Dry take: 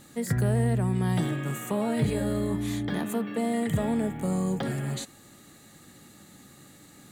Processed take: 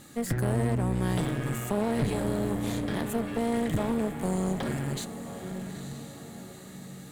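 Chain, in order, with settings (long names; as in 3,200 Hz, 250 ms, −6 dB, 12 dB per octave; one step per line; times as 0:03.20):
feedback delay with all-pass diffusion 905 ms, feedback 43%, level −10.5 dB
asymmetric clip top −37.5 dBFS
level +1.5 dB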